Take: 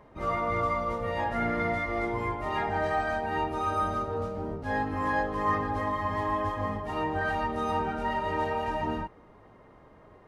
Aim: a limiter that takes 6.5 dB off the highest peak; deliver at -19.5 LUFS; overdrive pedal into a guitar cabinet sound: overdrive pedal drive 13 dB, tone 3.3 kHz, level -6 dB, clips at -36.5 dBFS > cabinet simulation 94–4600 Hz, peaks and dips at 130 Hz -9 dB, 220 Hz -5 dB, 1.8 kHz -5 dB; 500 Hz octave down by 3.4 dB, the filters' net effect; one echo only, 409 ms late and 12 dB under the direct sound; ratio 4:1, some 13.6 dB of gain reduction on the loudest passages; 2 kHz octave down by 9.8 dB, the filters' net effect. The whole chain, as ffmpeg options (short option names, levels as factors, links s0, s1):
-filter_complex "[0:a]equalizer=f=500:t=o:g=-3.5,equalizer=f=2000:t=o:g=-8.5,acompressor=threshold=0.00708:ratio=4,alimiter=level_in=5.31:limit=0.0631:level=0:latency=1,volume=0.188,aecho=1:1:409:0.251,asplit=2[s0][s1];[s1]highpass=f=720:p=1,volume=4.47,asoftclip=type=tanh:threshold=0.015[s2];[s0][s2]amix=inputs=2:normalize=0,lowpass=f=3300:p=1,volume=0.501,highpass=94,equalizer=f=130:t=q:w=4:g=-9,equalizer=f=220:t=q:w=4:g=-5,equalizer=f=1800:t=q:w=4:g=-5,lowpass=f=4600:w=0.5412,lowpass=f=4600:w=1.3066,volume=20"